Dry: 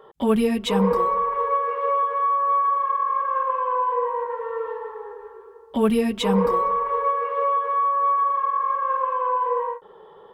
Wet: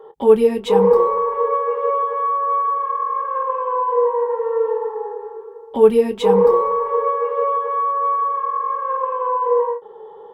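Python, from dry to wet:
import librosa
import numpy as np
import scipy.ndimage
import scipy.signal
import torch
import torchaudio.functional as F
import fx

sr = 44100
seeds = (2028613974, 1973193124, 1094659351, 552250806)

y = fx.doubler(x, sr, ms=25.0, db=-13)
y = fx.small_body(y, sr, hz=(450.0, 830.0), ring_ms=30, db=14)
y = y * librosa.db_to_amplitude(-3.5)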